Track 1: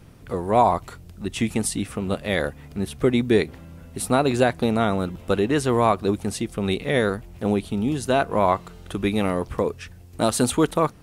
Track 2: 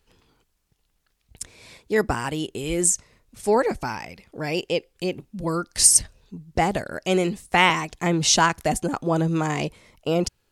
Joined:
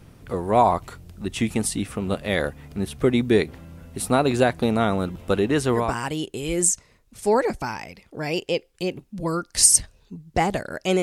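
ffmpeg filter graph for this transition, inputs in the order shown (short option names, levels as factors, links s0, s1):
-filter_complex "[0:a]apad=whole_dur=11.02,atrim=end=11.02,atrim=end=5.96,asetpts=PTS-STARTPTS[s0];[1:a]atrim=start=1.93:end=7.23,asetpts=PTS-STARTPTS[s1];[s0][s1]acrossfade=d=0.24:c1=tri:c2=tri"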